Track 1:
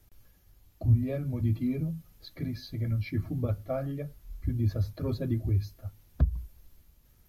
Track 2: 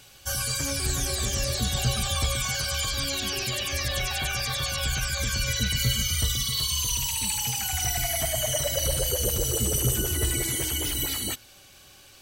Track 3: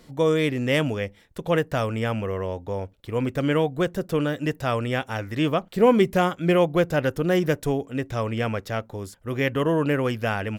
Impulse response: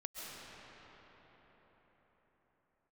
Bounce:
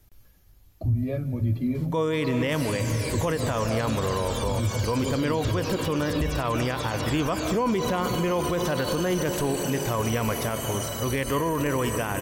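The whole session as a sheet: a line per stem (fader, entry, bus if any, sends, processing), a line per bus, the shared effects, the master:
+2.0 dB, 0.00 s, send −12 dB, no processing
−7.0 dB, 2.25 s, no send, no processing
+0.5 dB, 1.75 s, send −6 dB, parametric band 1,000 Hz +9.5 dB 0.26 octaves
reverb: on, pre-delay 95 ms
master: brickwall limiter −17 dBFS, peak gain reduction 15.5 dB

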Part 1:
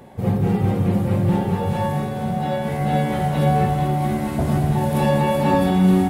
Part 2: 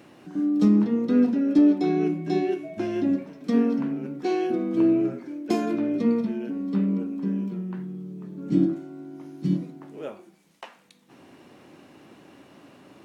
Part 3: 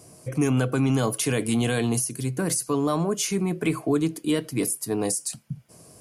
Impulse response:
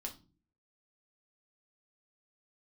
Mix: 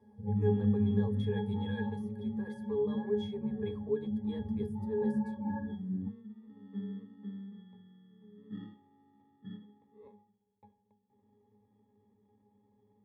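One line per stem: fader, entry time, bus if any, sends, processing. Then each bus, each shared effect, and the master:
−6.0 dB, 0.00 s, send −6.5 dB, gate on every frequency bin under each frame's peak −20 dB strong; string-ensemble chorus
−5.0 dB, 0.00 s, no send, decimation without filtering 28×; low-pass filter 3,000 Hz; automatic ducking −13 dB, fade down 1.85 s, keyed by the third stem
+2.5 dB, 0.00 s, no send, high-pass filter 350 Hz 24 dB per octave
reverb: on, pre-delay 5 ms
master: parametric band 6,800 Hz −7 dB 0.61 octaves; resonances in every octave G#, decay 0.24 s

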